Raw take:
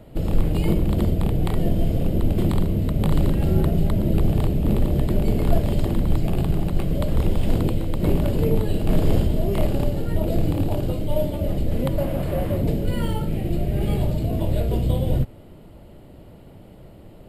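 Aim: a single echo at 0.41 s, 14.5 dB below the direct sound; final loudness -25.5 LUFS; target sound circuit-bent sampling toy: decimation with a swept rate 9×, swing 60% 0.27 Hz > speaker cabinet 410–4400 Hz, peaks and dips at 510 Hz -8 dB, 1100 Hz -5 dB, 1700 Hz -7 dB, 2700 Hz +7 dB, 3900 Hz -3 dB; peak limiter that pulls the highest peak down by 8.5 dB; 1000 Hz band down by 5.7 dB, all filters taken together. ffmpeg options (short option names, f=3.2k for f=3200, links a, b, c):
-af "equalizer=f=1k:t=o:g=-5,alimiter=limit=-15dB:level=0:latency=1,aecho=1:1:410:0.188,acrusher=samples=9:mix=1:aa=0.000001:lfo=1:lforange=5.4:lforate=0.27,highpass=410,equalizer=f=510:t=q:w=4:g=-8,equalizer=f=1.1k:t=q:w=4:g=-5,equalizer=f=1.7k:t=q:w=4:g=-7,equalizer=f=2.7k:t=q:w=4:g=7,equalizer=f=3.9k:t=q:w=4:g=-3,lowpass=f=4.4k:w=0.5412,lowpass=f=4.4k:w=1.3066,volume=11dB"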